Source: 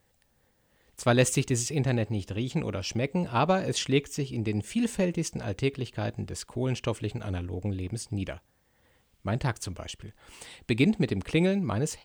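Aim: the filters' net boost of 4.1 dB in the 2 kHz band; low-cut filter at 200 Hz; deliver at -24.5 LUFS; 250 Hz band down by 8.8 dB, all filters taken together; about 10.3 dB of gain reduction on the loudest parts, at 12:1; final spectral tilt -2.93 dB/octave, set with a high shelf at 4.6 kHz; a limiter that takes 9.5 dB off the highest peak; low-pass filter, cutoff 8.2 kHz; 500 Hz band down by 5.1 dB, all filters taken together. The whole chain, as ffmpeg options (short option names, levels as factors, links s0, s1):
-af "highpass=200,lowpass=8200,equalizer=f=250:t=o:g=-8,equalizer=f=500:t=o:g=-4,equalizer=f=2000:t=o:g=4,highshelf=f=4600:g=7,acompressor=threshold=0.0316:ratio=12,volume=4.73,alimiter=limit=0.299:level=0:latency=1"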